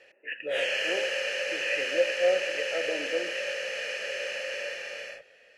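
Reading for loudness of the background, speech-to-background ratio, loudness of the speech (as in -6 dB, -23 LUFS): -30.5 LUFS, -1.5 dB, -32.0 LUFS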